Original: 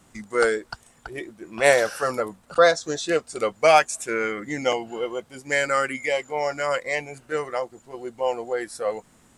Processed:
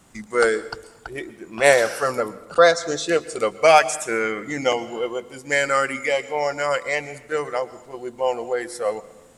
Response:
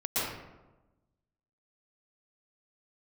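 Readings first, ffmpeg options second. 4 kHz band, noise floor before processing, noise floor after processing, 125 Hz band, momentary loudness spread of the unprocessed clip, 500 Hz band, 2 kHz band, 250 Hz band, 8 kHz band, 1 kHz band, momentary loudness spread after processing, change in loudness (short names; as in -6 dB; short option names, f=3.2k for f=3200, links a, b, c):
+2.5 dB, -57 dBFS, -49 dBFS, +2.0 dB, 18 LU, +2.5 dB, +2.5 dB, +2.0 dB, +3.0 dB, +2.5 dB, 18 LU, +2.5 dB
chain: -filter_complex "[0:a]bandreject=f=50.98:t=h:w=4,bandreject=f=101.96:t=h:w=4,bandreject=f=152.94:t=h:w=4,bandreject=f=203.92:t=h:w=4,bandreject=f=254.9:t=h:w=4,bandreject=f=305.88:t=h:w=4,bandreject=f=356.86:t=h:w=4,asplit=2[a][b];[1:a]atrim=start_sample=2205,highshelf=f=3.6k:g=10.5[c];[b][c]afir=irnorm=-1:irlink=0,volume=-27.5dB[d];[a][d]amix=inputs=2:normalize=0,volume=2dB"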